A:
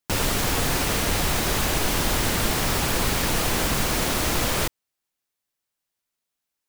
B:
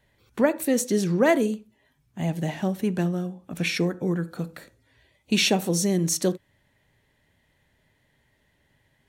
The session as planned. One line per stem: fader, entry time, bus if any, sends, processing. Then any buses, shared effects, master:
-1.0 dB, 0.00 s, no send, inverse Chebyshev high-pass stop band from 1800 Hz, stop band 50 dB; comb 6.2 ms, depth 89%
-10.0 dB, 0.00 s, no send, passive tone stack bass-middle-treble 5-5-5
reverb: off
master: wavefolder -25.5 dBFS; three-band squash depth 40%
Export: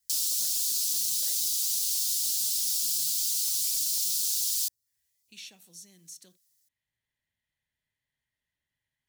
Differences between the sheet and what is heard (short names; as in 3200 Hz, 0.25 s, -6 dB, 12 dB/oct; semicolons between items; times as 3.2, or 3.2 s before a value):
stem B -10.0 dB -> -21.5 dB; master: missing wavefolder -25.5 dBFS